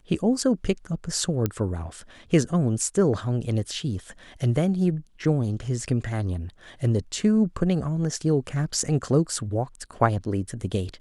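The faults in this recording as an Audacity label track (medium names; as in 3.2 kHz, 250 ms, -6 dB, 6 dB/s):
1.460000	1.460000	pop -11 dBFS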